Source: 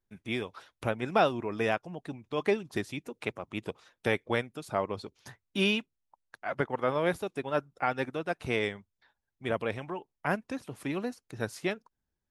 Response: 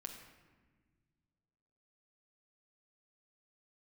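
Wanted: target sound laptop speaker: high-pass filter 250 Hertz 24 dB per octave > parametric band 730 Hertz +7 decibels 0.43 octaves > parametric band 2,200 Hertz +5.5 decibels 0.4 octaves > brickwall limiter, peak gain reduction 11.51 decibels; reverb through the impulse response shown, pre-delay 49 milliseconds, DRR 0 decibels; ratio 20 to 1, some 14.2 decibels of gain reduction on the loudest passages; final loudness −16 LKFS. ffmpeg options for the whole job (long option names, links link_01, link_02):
-filter_complex "[0:a]acompressor=threshold=-34dB:ratio=20,asplit=2[link_01][link_02];[1:a]atrim=start_sample=2205,adelay=49[link_03];[link_02][link_03]afir=irnorm=-1:irlink=0,volume=3.5dB[link_04];[link_01][link_04]amix=inputs=2:normalize=0,highpass=frequency=250:width=0.5412,highpass=frequency=250:width=1.3066,equalizer=frequency=730:width_type=o:width=0.43:gain=7,equalizer=frequency=2200:width_type=o:width=0.4:gain=5.5,volume=25.5dB,alimiter=limit=-5.5dB:level=0:latency=1"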